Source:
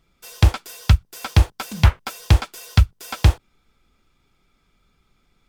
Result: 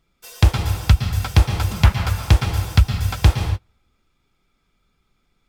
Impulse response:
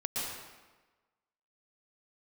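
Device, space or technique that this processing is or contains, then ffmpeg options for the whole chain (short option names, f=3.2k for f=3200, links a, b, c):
keyed gated reverb: -filter_complex "[0:a]asplit=3[a][b][c];[1:a]atrim=start_sample=2205[d];[b][d]afir=irnorm=-1:irlink=0[e];[c]apad=whole_len=241918[f];[e][f]sidechaingate=range=-33dB:threshold=-44dB:ratio=16:detection=peak,volume=-4dB[g];[a][g]amix=inputs=2:normalize=0,volume=-3.5dB"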